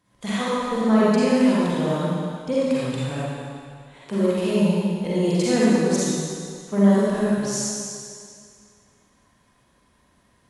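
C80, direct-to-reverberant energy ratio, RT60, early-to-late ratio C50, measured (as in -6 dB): -3.5 dB, -9.0 dB, 2.2 s, -6.5 dB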